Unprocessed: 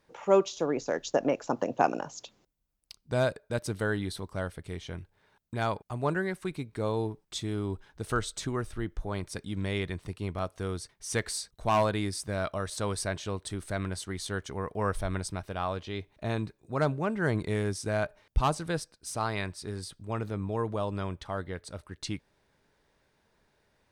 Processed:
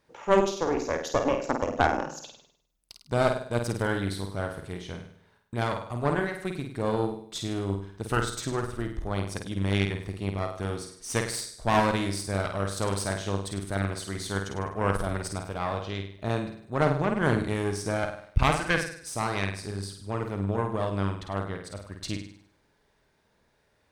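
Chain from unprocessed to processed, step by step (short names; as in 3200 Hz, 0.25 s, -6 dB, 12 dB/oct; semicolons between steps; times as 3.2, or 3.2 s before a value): 18.37–18.92 band shelf 2000 Hz +12.5 dB 1 oct; flutter echo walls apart 8.7 m, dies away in 0.62 s; added harmonics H 4 -11 dB, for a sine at -9.5 dBFS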